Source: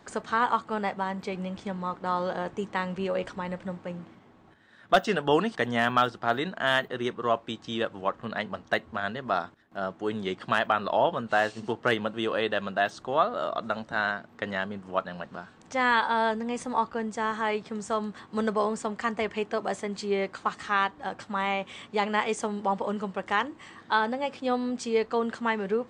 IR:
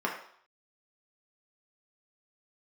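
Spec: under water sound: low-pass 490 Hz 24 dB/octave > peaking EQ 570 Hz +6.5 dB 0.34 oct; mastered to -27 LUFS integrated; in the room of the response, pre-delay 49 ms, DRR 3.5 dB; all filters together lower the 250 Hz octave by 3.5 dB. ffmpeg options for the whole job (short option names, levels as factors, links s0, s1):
-filter_complex "[0:a]equalizer=f=250:t=o:g=-4.5,asplit=2[s0][s1];[1:a]atrim=start_sample=2205,adelay=49[s2];[s1][s2]afir=irnorm=-1:irlink=0,volume=0.237[s3];[s0][s3]amix=inputs=2:normalize=0,lowpass=f=490:w=0.5412,lowpass=f=490:w=1.3066,equalizer=f=570:t=o:w=0.34:g=6.5,volume=2.11"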